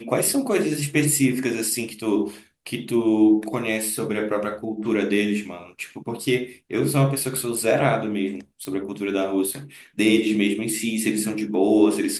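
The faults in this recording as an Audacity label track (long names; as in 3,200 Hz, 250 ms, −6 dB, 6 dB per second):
8.650000	8.650000	click −16 dBFS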